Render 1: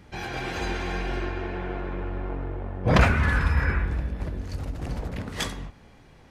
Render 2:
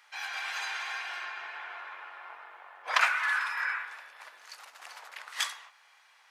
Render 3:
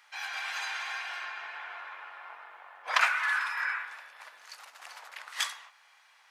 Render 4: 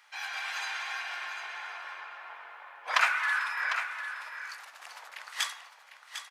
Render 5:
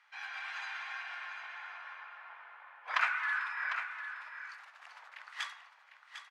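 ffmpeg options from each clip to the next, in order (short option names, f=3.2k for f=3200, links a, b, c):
-af "highpass=f=990:w=0.5412,highpass=f=990:w=1.3066"
-af "equalizer=f=390:t=o:w=0.47:g=-4.5"
-af "aecho=1:1:751:0.335"
-af "bandpass=f=1.5k:t=q:w=0.77:csg=0,volume=-4.5dB"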